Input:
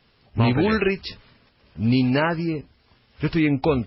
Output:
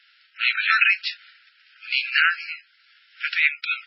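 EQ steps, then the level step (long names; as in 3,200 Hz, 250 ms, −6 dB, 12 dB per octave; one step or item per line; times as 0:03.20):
low-pass filter 4,200 Hz 12 dB per octave
dynamic equaliser 2,500 Hz, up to +5 dB, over −43 dBFS, Q 4.5
linear-phase brick-wall high-pass 1,300 Hz
+8.5 dB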